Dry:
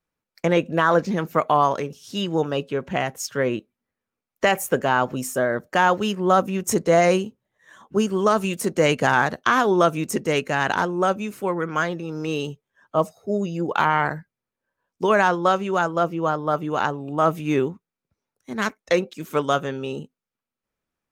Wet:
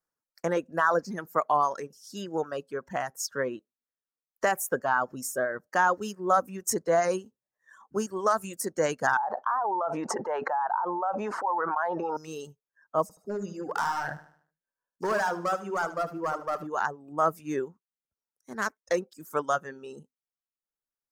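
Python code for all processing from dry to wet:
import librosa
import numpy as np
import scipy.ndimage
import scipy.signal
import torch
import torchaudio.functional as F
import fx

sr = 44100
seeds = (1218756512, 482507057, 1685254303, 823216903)

y = fx.chain(x, sr, fx.bandpass_q(hz=860.0, q=5.7),
    fx.air_absorb(metres=73.0),
    fx.env_flatten(amount_pct=100), at=(9.17, 12.17))
y = fx.chain(y, sr, fx.low_shelf(hz=200.0, db=2.0),
    fx.clip_hard(threshold_db=-17.5),
    fx.echo_feedback(ms=75, feedback_pct=43, wet_db=-6), at=(13.02, 16.67))
y = fx.band_shelf(y, sr, hz=2900.0, db=-12.5, octaves=1.1)
y = fx.dereverb_blind(y, sr, rt60_s=1.6)
y = fx.low_shelf(y, sr, hz=400.0, db=-10.5)
y = y * 10.0 ** (-2.5 / 20.0)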